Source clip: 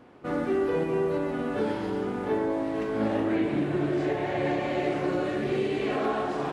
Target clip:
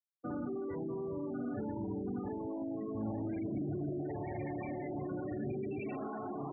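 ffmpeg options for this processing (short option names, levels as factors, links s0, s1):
-filter_complex "[0:a]afftfilt=real='re*gte(hypot(re,im),0.0562)':imag='im*gte(hypot(re,im),0.0562)':win_size=1024:overlap=0.75,equalizer=f=160:t=o:w=0.33:g=-11,equalizer=f=500:t=o:w=0.33:g=-11,equalizer=f=1600:t=o:w=0.33:g=-3,equalizer=f=2500:t=o:w=0.33:g=10,alimiter=level_in=1.5:limit=0.0631:level=0:latency=1:release=12,volume=0.668,acrossover=split=200[s0][s1];[s1]acompressor=threshold=0.00355:ratio=2.5[s2];[s0][s2]amix=inputs=2:normalize=0,volume=1.5"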